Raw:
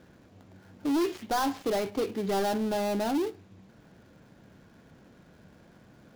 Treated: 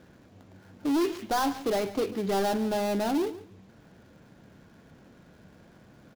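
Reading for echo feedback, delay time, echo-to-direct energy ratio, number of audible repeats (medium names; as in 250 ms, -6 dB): 19%, 142 ms, -16.0 dB, 2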